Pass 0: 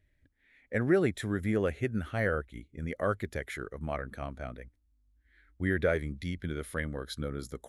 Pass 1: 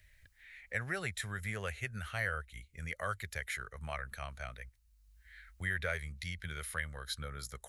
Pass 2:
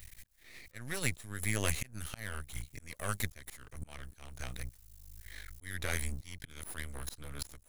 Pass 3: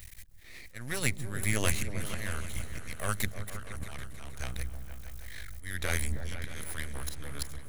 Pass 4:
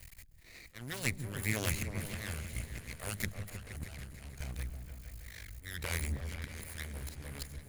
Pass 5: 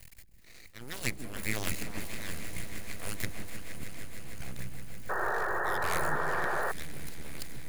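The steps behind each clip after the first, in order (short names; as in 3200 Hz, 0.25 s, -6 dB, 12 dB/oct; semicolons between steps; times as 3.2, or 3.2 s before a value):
passive tone stack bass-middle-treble 10-0-10; notch 3400 Hz, Q 16; three-band squash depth 40%; gain +5 dB
EQ curve 150 Hz 0 dB, 1400 Hz -9 dB, 5900 Hz +6 dB, 11000 Hz +10 dB; auto swell 0.565 s; half-wave rectifier; gain +14.5 dB
repeats that get brighter 0.157 s, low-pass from 200 Hz, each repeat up 2 oct, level -6 dB; gain +3.5 dB
minimum comb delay 0.44 ms; gain -1 dB
full-wave rectifier; swelling echo 0.155 s, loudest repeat 5, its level -16.5 dB; painted sound noise, 5.09–6.72, 330–1900 Hz -34 dBFS; gain +2 dB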